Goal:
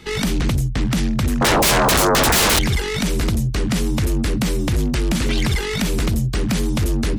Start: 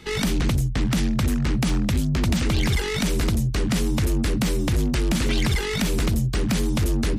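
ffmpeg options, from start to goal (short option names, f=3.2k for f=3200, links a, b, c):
-filter_complex "[0:a]asettb=1/sr,asplit=3[a][b][c];[a]atrim=end=1.414[d];[b]atrim=start=1.41:end=2.59,asetpts=PTS-STARTPTS,afade=t=in:d=0.004:c=qsin,afade=t=out:st=1.176:d=0.004:c=qsin,aeval=exprs='0.188*sin(PI/2*7.08*val(0)/0.188)':c=same[e];[c]atrim=start=2.586[f];[d][e]acrossfade=d=0.004:c1=hsin:c2=qsin[g];[g][f]acrossfade=d=0.004:c1=qsin:c2=hsin,volume=2.5dB"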